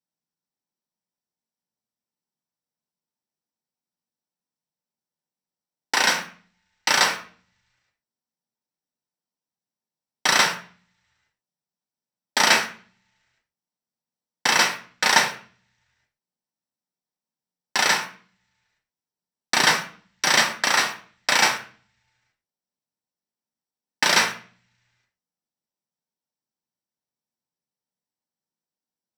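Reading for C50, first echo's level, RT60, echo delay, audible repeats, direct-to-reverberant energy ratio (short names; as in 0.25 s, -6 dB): 10.0 dB, none, 0.45 s, none, none, 2.5 dB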